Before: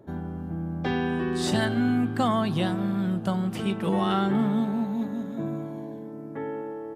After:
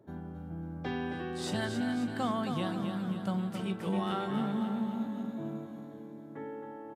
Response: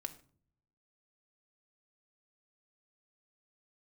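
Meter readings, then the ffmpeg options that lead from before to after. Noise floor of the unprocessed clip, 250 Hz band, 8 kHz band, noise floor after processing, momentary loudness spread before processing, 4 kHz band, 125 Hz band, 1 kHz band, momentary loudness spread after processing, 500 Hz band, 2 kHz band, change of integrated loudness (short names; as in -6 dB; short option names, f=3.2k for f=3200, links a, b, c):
-38 dBFS, -7.5 dB, -7.5 dB, -47 dBFS, 11 LU, -7.5 dB, -8.5 dB, -7.5 dB, 12 LU, -8.0 dB, -7.5 dB, -8.0 dB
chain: -filter_complex "[0:a]highpass=63,asplit=2[a][b];[b]aecho=0:1:269|538|807|1076|1345|1614|1883:0.473|0.256|0.138|0.0745|0.0402|0.0217|0.0117[c];[a][c]amix=inputs=2:normalize=0,volume=-8.5dB"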